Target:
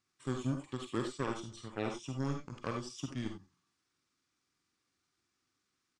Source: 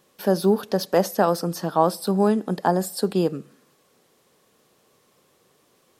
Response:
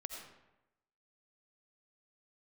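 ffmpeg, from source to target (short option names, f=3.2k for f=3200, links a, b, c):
-filter_complex "[0:a]aeval=exprs='0.562*(cos(1*acos(clip(val(0)/0.562,-1,1)))-cos(1*PI/2))+0.0501*(cos(7*acos(clip(val(0)/0.562,-1,1)))-cos(7*PI/2))':c=same,equalizer=f=1k:t=o:w=1:g=-11,equalizer=f=2k:t=o:w=1:g=10,equalizer=f=8k:t=o:w=1:g=8,asetrate=29433,aresample=44100,atempo=1.49831[a];[1:a]atrim=start_sample=2205,afade=t=out:st=0.23:d=0.01,atrim=end_sample=10584,asetrate=79380,aresample=44100[b];[a][b]afir=irnorm=-1:irlink=0,volume=-5.5dB"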